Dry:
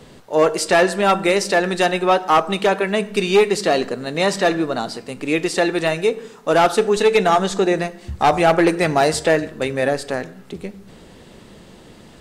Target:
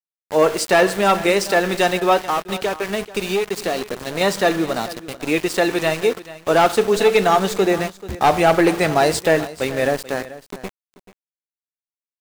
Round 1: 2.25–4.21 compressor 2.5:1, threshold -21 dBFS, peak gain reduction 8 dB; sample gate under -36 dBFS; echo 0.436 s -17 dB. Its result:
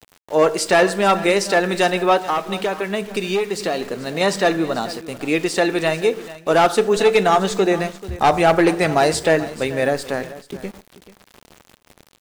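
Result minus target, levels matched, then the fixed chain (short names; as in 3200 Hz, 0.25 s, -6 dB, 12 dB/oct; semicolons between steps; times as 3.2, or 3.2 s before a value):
sample gate: distortion -11 dB
2.25–4.21 compressor 2.5:1, threshold -21 dBFS, peak gain reduction 8 dB; sample gate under -26 dBFS; echo 0.436 s -17 dB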